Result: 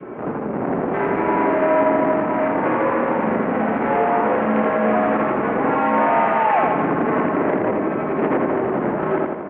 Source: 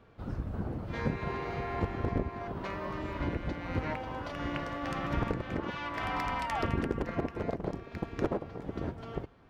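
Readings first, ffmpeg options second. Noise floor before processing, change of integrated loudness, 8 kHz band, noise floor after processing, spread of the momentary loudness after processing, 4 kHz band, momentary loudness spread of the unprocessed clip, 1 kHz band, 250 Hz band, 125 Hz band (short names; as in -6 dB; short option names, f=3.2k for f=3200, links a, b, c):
-49 dBFS, +16.0 dB, under -20 dB, -26 dBFS, 5 LU, n/a, 6 LU, +18.5 dB, +15.5 dB, +4.5 dB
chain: -filter_complex "[0:a]adynamicequalizer=threshold=0.00447:dfrequency=870:dqfactor=1.2:tfrequency=870:tqfactor=1.2:attack=5:release=100:ratio=0.375:range=2.5:mode=boostabove:tftype=bell,aeval=exprs='0.168*sin(PI/2*2.24*val(0)/0.168)':c=same,acontrast=87,alimiter=limit=-19dB:level=0:latency=1:release=84,acontrast=64,tiltshelf=f=1.2k:g=8,asoftclip=type=hard:threshold=-15.5dB,asplit=2[a][b];[b]aecho=0:1:83|166|249|332|415|498|581:0.631|0.341|0.184|0.0994|0.0537|0.029|0.0156[c];[a][c]amix=inputs=2:normalize=0,highpass=f=300:t=q:w=0.5412,highpass=f=300:t=q:w=1.307,lowpass=f=2.5k:t=q:w=0.5176,lowpass=f=2.5k:t=q:w=0.7071,lowpass=f=2.5k:t=q:w=1.932,afreqshift=-71"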